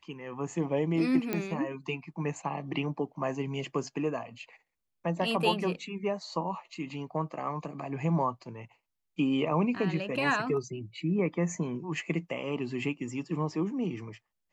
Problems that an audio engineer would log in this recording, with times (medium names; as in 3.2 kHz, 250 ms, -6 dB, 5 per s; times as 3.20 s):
1.33 s: pop -16 dBFS